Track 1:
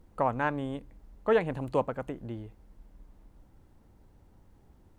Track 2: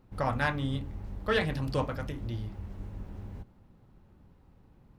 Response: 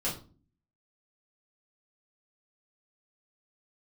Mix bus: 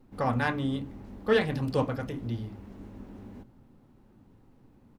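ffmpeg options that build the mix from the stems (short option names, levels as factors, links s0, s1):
-filter_complex "[0:a]volume=0.335,asplit=2[s0][s1];[s1]volume=0.282[s2];[1:a]lowshelf=f=180:t=q:w=3:g=-10,adelay=2.7,volume=0.944[s3];[2:a]atrim=start_sample=2205[s4];[s2][s4]afir=irnorm=-1:irlink=0[s5];[s0][s3][s5]amix=inputs=3:normalize=0,equalizer=f=120:w=2.3:g=12"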